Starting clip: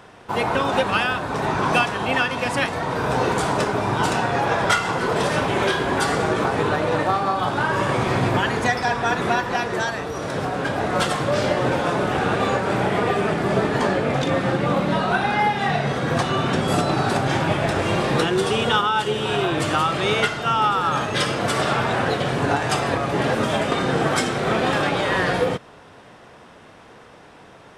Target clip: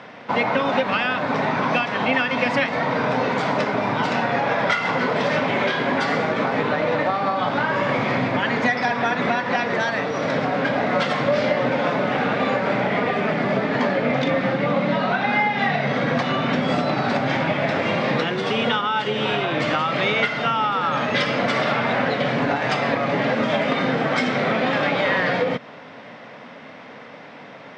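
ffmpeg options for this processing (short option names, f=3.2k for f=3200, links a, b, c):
-af "acompressor=threshold=-23dB:ratio=6,highpass=f=130:w=0.5412,highpass=f=130:w=1.3066,equalizer=f=250:t=q:w=4:g=7,equalizer=f=360:t=q:w=4:g=-7,equalizer=f=570:t=q:w=4:g=5,equalizer=f=2.1k:t=q:w=4:g=8,lowpass=f=5.2k:w=0.5412,lowpass=f=5.2k:w=1.3066,volume=4dB"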